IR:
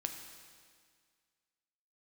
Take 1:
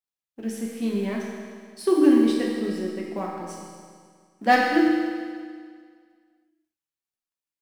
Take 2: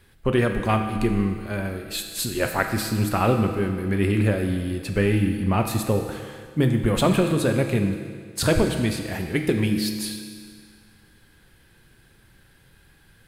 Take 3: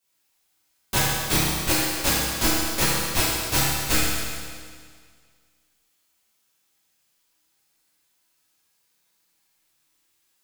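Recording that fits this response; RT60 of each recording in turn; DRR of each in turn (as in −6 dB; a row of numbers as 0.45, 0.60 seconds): 2; 1.9, 1.9, 1.9 seconds; −3.0, 4.5, −11.5 decibels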